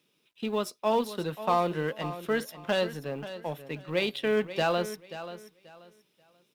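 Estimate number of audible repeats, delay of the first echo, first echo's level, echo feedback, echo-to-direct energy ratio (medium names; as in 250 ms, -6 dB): 2, 534 ms, -13.0 dB, 24%, -12.5 dB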